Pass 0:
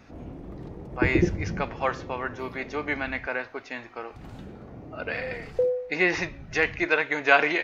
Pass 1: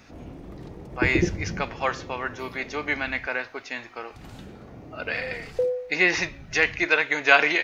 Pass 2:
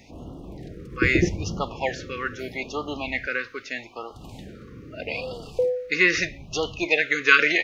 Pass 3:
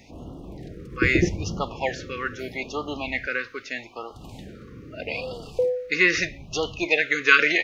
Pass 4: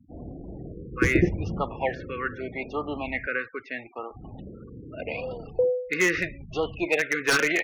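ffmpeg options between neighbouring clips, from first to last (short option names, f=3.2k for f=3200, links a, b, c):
-af "highshelf=f=2.2k:g=9.5,volume=-1dB"
-af "afftfilt=real='re*(1-between(b*sr/1024,730*pow(2000/730,0.5+0.5*sin(2*PI*0.79*pts/sr))/1.41,730*pow(2000/730,0.5+0.5*sin(2*PI*0.79*pts/sr))*1.41))':imag='im*(1-between(b*sr/1024,730*pow(2000/730,0.5+0.5*sin(2*PI*0.79*pts/sr))/1.41,730*pow(2000/730,0.5+0.5*sin(2*PI*0.79*pts/sr))*1.41))':win_size=1024:overlap=0.75,volume=1.5dB"
-af "aeval=exprs='0.891*(cos(1*acos(clip(val(0)/0.891,-1,1)))-cos(1*PI/2))+0.02*(cos(2*acos(clip(val(0)/0.891,-1,1)))-cos(2*PI/2))':c=same"
-filter_complex "[0:a]afftfilt=real='re*gte(hypot(re,im),0.0112)':imag='im*gte(hypot(re,im),0.0112)':win_size=1024:overlap=0.75,lowpass=2.2k,acrossover=split=540[a][b];[b]aeval=exprs='0.158*(abs(mod(val(0)/0.158+3,4)-2)-1)':c=same[c];[a][c]amix=inputs=2:normalize=0"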